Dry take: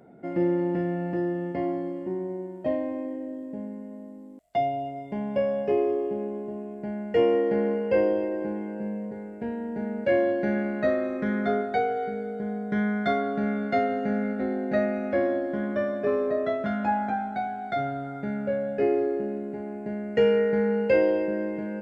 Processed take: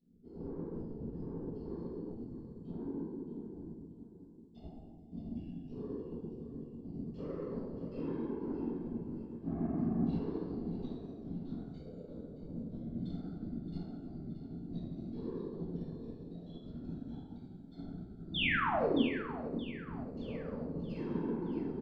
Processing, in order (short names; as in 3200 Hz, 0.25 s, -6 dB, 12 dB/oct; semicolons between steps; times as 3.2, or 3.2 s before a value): elliptic band-stop 250–4200 Hz, stop band 40 dB; high shelf 4300 Hz -12 dB; comb 6.3 ms, depth 50%; dynamic EQ 150 Hz, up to +8 dB, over -48 dBFS, Q 2.4; limiter -26.5 dBFS, peak gain reduction 8.5 dB; resonator bank D#2 major, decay 0.53 s; overdrive pedal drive 23 dB, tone 2200 Hz, clips at -36.5 dBFS; whisperiser; painted sound fall, 18.34–19.02, 220–3700 Hz -38 dBFS; on a send: feedback echo 0.623 s, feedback 50%, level -10 dB; on the sum: shoebox room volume 250 m³, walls mixed, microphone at 1.6 m; upward expander 1.5:1, over -50 dBFS; gain +3.5 dB